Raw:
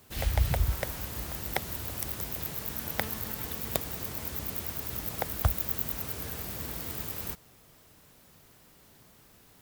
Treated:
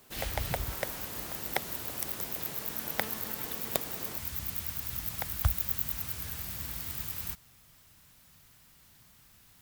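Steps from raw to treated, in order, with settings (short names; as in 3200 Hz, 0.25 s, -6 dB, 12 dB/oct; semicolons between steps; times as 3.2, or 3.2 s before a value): bell 67 Hz -12.5 dB 1.9 oct, from 4.17 s 430 Hz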